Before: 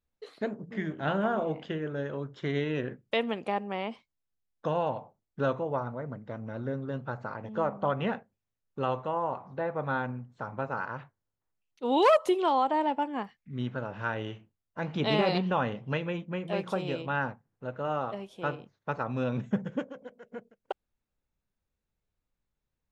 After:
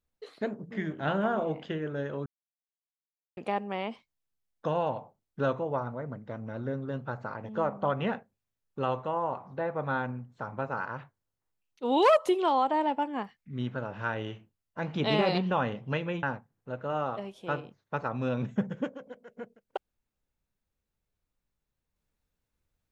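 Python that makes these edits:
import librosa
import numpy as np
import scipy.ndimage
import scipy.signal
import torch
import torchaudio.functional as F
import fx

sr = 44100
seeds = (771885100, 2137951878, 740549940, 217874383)

y = fx.edit(x, sr, fx.silence(start_s=2.26, length_s=1.11),
    fx.cut(start_s=16.23, length_s=0.95), tone=tone)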